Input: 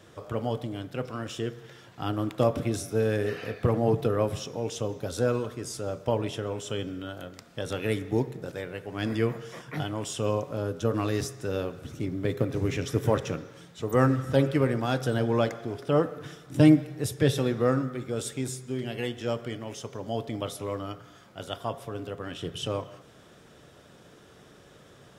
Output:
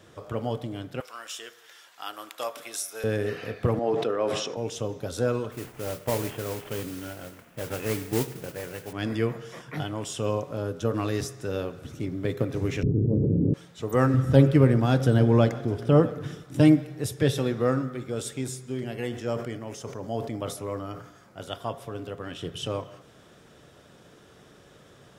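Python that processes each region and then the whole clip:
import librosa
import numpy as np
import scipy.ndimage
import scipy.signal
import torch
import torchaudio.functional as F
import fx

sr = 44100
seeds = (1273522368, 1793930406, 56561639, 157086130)

y = fx.chain(x, sr, fx.highpass(hz=940.0, slope=12),
    fx.high_shelf(hz=6200.0, db=9.5), at=(1.0, 3.04))
y = fx.chain(y, sr, fx.highpass(hz=330.0, slope=12),
    fx.air_absorb(metres=72.0),
    fx.sustainer(db_per_s=38.0), at=(3.79, 4.57))
y = fx.chain(y, sr, fx.cvsd(bps=16000),
    fx.mod_noise(seeds[0], snr_db=10), at=(5.51, 8.93))
y = fx.chain(y, sr, fx.cheby2_lowpass(hz=2000.0, order=4, stop_db=80),
    fx.room_flutter(wall_m=4.9, rt60_s=0.25),
    fx.env_flatten(amount_pct=100), at=(12.83, 13.54))
y = fx.chain(y, sr, fx.low_shelf(hz=310.0, db=10.5),
    fx.echo_single(ms=650, db=-20.5), at=(14.14, 16.44))
y = fx.chain(y, sr, fx.peak_eq(hz=3300.0, db=-7.0, octaves=0.7),
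    fx.sustainer(db_per_s=84.0), at=(18.79, 21.42))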